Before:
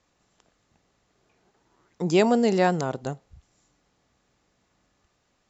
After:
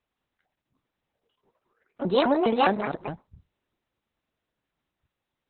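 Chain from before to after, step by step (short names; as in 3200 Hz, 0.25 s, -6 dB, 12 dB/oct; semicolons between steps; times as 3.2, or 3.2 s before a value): repeated pitch sweeps +8.5 st, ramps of 0.205 s; spectral noise reduction 14 dB; Opus 6 kbps 48000 Hz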